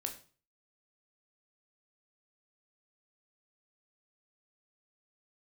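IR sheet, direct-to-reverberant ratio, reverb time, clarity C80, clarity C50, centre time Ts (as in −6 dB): 3.5 dB, 0.40 s, 15.5 dB, 11.0 dB, 13 ms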